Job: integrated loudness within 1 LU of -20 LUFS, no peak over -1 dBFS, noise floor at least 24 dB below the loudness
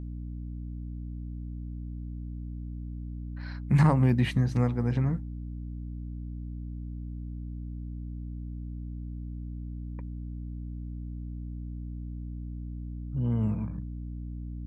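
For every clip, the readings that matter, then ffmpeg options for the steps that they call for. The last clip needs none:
hum 60 Hz; highest harmonic 300 Hz; hum level -35 dBFS; loudness -33.0 LUFS; peak level -9.5 dBFS; loudness target -20.0 LUFS
-> -af "bandreject=f=60:t=h:w=4,bandreject=f=120:t=h:w=4,bandreject=f=180:t=h:w=4,bandreject=f=240:t=h:w=4,bandreject=f=300:t=h:w=4"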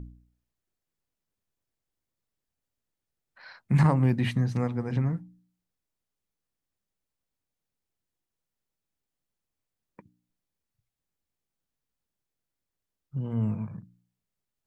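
hum not found; loudness -27.0 LUFS; peak level -9.0 dBFS; loudness target -20.0 LUFS
-> -af "volume=2.24"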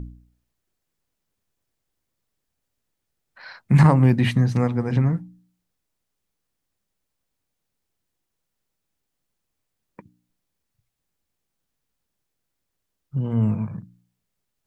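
loudness -20.0 LUFS; peak level -2.0 dBFS; noise floor -80 dBFS

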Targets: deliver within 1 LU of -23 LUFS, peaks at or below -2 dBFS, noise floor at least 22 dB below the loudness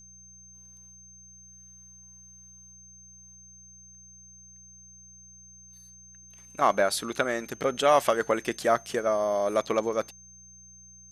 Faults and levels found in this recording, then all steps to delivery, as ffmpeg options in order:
hum 60 Hz; highest harmonic 180 Hz; hum level -57 dBFS; steady tone 6.3 kHz; tone level -49 dBFS; loudness -26.0 LUFS; peak level -7.5 dBFS; loudness target -23.0 LUFS
-> -af "bandreject=f=60:t=h:w=4,bandreject=f=120:t=h:w=4,bandreject=f=180:t=h:w=4"
-af "bandreject=f=6300:w=30"
-af "volume=1.41"

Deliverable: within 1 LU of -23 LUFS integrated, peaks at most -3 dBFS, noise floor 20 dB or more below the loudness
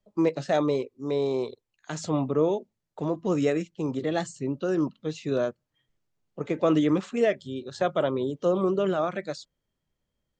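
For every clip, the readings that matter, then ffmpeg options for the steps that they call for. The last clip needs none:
loudness -27.5 LUFS; peak level -12.0 dBFS; loudness target -23.0 LUFS
-> -af "volume=1.68"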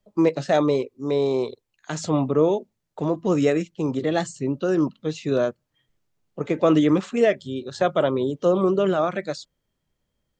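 loudness -23.0 LUFS; peak level -7.5 dBFS; noise floor -78 dBFS

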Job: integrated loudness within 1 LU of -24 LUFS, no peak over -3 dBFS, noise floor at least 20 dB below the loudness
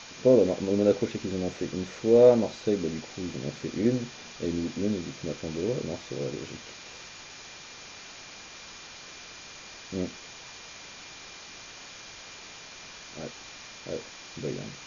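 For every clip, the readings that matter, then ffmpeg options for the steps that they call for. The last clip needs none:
steady tone 2.4 kHz; tone level -53 dBFS; noise floor -46 dBFS; noise floor target -48 dBFS; loudness -28.0 LUFS; peak level -7.5 dBFS; loudness target -24.0 LUFS
-> -af "bandreject=f=2400:w=30"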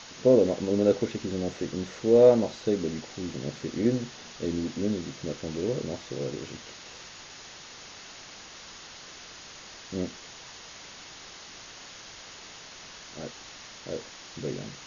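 steady tone not found; noise floor -46 dBFS; noise floor target -48 dBFS
-> -af "afftdn=nr=6:nf=-46"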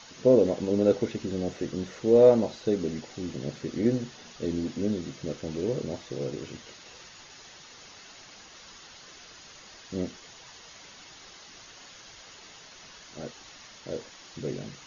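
noise floor -50 dBFS; loudness -27.5 LUFS; peak level -7.5 dBFS; loudness target -24.0 LUFS
-> -af "volume=1.5"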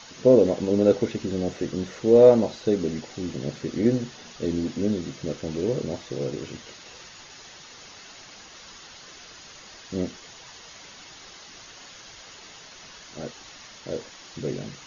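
loudness -24.0 LUFS; peak level -4.0 dBFS; noise floor -46 dBFS

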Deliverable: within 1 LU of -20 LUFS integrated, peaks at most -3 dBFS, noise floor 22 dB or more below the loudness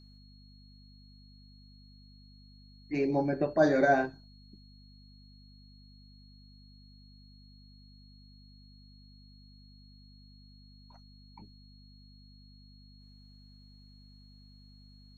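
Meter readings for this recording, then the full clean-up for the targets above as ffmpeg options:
hum 50 Hz; highest harmonic 250 Hz; hum level -54 dBFS; steady tone 4.3 kHz; tone level -61 dBFS; loudness -28.0 LUFS; peak level -13.0 dBFS; loudness target -20.0 LUFS
-> -af "bandreject=f=50:t=h:w=4,bandreject=f=100:t=h:w=4,bandreject=f=150:t=h:w=4,bandreject=f=200:t=h:w=4,bandreject=f=250:t=h:w=4"
-af "bandreject=f=4300:w=30"
-af "volume=2.51"

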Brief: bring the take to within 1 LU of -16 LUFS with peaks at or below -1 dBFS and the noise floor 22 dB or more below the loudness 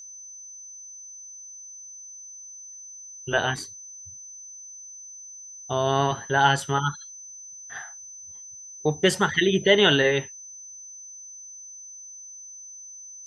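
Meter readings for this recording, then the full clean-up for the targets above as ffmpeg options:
steady tone 6.1 kHz; tone level -40 dBFS; loudness -22.5 LUFS; peak level -5.0 dBFS; loudness target -16.0 LUFS
-> -af "bandreject=f=6100:w=30"
-af "volume=2.11,alimiter=limit=0.891:level=0:latency=1"

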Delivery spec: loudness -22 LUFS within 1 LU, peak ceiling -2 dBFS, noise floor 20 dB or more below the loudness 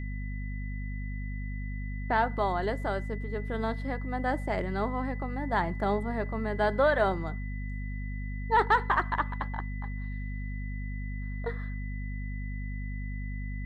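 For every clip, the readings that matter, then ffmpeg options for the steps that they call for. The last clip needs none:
hum 50 Hz; highest harmonic 250 Hz; hum level -32 dBFS; steady tone 2 kHz; tone level -46 dBFS; loudness -32.0 LUFS; peak level -12.5 dBFS; loudness target -22.0 LUFS
-> -af "bandreject=f=50:t=h:w=4,bandreject=f=100:t=h:w=4,bandreject=f=150:t=h:w=4,bandreject=f=200:t=h:w=4,bandreject=f=250:t=h:w=4"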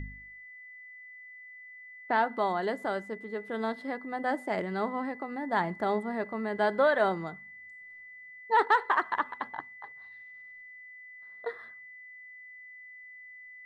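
hum not found; steady tone 2 kHz; tone level -46 dBFS
-> -af "bandreject=f=2000:w=30"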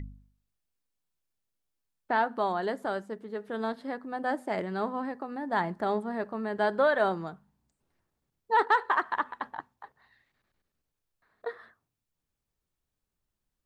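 steady tone not found; loudness -30.5 LUFS; peak level -13.5 dBFS; loudness target -22.0 LUFS
-> -af "volume=2.66"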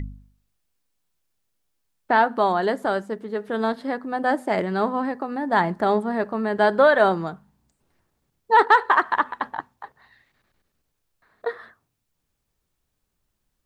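loudness -22.0 LUFS; peak level -5.0 dBFS; noise floor -77 dBFS

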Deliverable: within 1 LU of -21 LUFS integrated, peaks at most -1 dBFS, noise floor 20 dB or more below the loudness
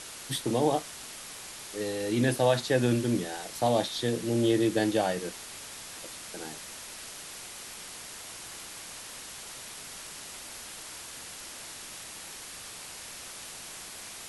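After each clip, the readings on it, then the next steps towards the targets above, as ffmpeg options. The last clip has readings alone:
noise floor -44 dBFS; noise floor target -53 dBFS; loudness -32.5 LUFS; peak level -12.0 dBFS; loudness target -21.0 LUFS
-> -af "afftdn=nr=9:nf=-44"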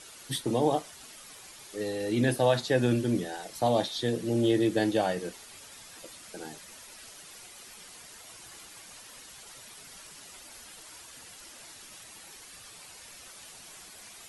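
noise floor -49 dBFS; loudness -28.5 LUFS; peak level -12.0 dBFS; loudness target -21.0 LUFS
-> -af "volume=2.37"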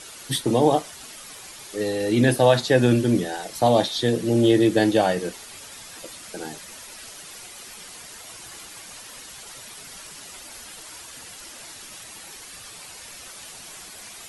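loudness -21.0 LUFS; peak level -4.5 dBFS; noise floor -42 dBFS

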